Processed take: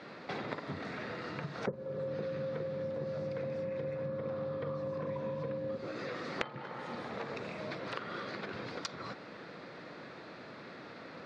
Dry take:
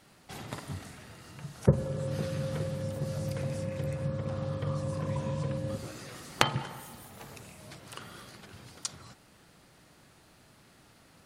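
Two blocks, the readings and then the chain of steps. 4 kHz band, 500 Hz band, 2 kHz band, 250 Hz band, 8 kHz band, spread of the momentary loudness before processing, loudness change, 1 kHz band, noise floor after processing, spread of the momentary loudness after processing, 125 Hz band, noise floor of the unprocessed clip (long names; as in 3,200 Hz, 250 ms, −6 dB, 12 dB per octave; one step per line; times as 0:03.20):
−7.0 dB, +0.5 dB, −1.0 dB, −5.0 dB, below −10 dB, 19 LU, −6.0 dB, −2.5 dB, −49 dBFS, 10 LU, −11.5 dB, −60 dBFS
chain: loudspeaker in its box 220–3,800 Hz, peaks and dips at 500 Hz +5 dB, 810 Hz −4 dB, 3,000 Hz −10 dB
downward compressor 6 to 1, threshold −50 dBFS, peak gain reduction 28.5 dB
level +13.5 dB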